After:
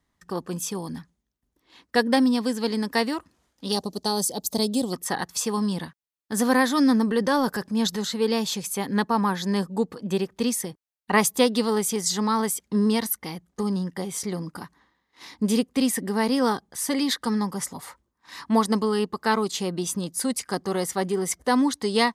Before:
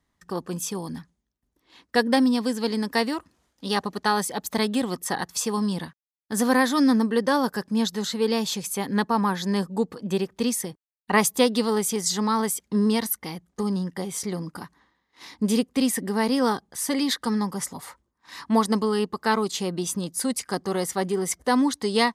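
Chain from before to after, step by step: 3.72–4.93 EQ curve 630 Hz 0 dB, 1800 Hz -19 dB, 4600 Hz +5 dB; 7.03–7.99 transient shaper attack -2 dB, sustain +5 dB

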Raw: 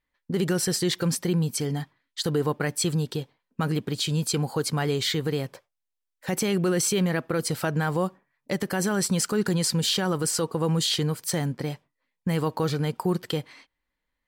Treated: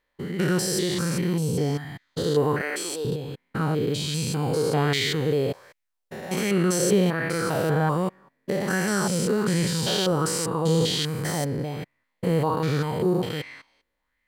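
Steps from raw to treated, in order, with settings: stepped spectrum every 0.2 s; 2.61–3.05 HPF 330 Hz 24 dB/oct; LFO bell 1.3 Hz 430–2200 Hz +10 dB; gain +3.5 dB

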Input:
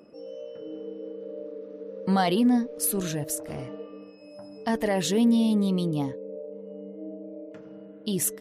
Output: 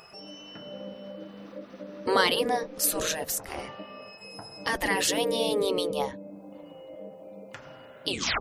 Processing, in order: tape stop at the end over 0.32 s; spectral gate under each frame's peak -10 dB weak; mismatched tape noise reduction encoder only; gain +7.5 dB

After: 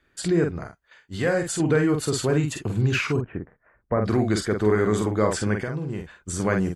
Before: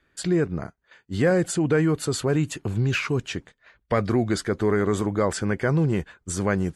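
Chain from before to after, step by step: 0.51–1.6 bell 230 Hz -7 dB 2.3 oct; 3.16–4.02 Bessel low-pass 1100 Hz, order 8; 5.59–6.4 compressor 12:1, threshold -27 dBFS, peak gain reduction 10 dB; doubler 47 ms -5 dB

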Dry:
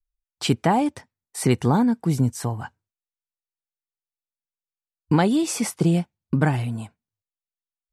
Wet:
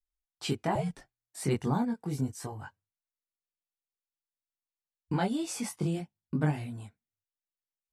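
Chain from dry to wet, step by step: chorus voices 2, 0.32 Hz, delay 21 ms, depth 1.5 ms; 0.75–1.42 frequency shift -120 Hz; gain -7 dB

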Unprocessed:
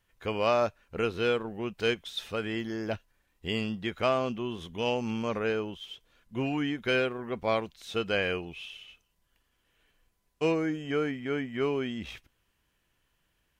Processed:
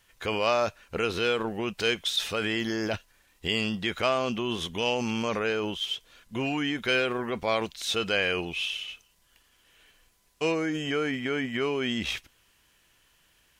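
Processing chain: low shelf 320 Hz -5 dB; in parallel at -1 dB: negative-ratio compressor -38 dBFS, ratio -1; on the sum: bell 6600 Hz +6 dB 2.7 oct

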